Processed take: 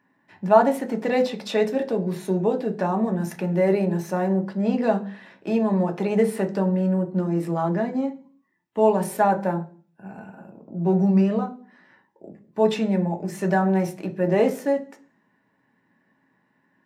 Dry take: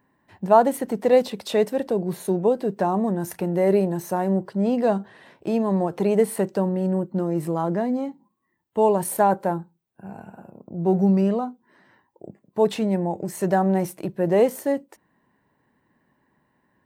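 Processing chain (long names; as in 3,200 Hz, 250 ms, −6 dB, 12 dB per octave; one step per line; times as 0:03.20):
high-shelf EQ 11,000 Hz −10.5 dB
convolution reverb RT60 0.45 s, pre-delay 3 ms, DRR 4.5 dB
level −2 dB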